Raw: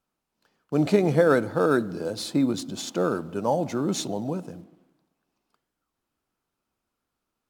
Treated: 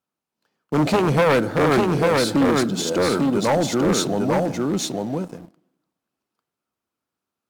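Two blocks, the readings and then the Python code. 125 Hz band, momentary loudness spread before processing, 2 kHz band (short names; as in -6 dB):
+6.5 dB, 11 LU, +7.5 dB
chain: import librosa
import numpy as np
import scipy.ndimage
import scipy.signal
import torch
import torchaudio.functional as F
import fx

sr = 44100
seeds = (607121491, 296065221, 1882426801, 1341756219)

y = np.minimum(x, 2.0 * 10.0 ** (-20.0 / 20.0) - x)
y = scipy.signal.sosfilt(scipy.signal.butter(2, 100.0, 'highpass', fs=sr, output='sos'), y)
y = y + 10.0 ** (-3.5 / 20.0) * np.pad(y, (int(847 * sr / 1000.0), 0))[:len(y)]
y = fx.leveller(y, sr, passes=2)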